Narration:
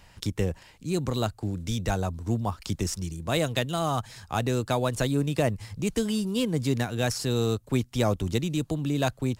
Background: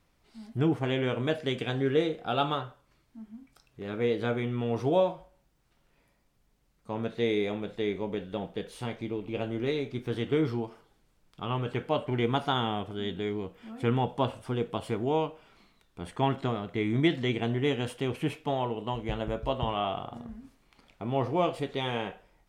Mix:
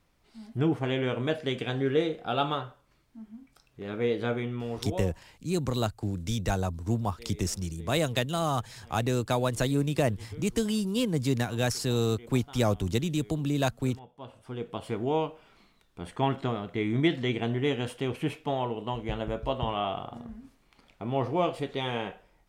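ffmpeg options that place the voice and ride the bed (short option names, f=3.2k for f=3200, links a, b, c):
-filter_complex "[0:a]adelay=4600,volume=-1dB[a];[1:a]volume=21dB,afade=t=out:st=4.32:d=0.83:silence=0.0891251,afade=t=in:st=14.17:d=0.88:silence=0.0891251[b];[a][b]amix=inputs=2:normalize=0"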